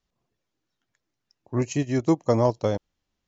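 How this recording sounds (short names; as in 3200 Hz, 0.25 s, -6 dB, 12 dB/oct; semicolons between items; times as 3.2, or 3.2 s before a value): noise floor -82 dBFS; spectral tilt -7.0 dB/oct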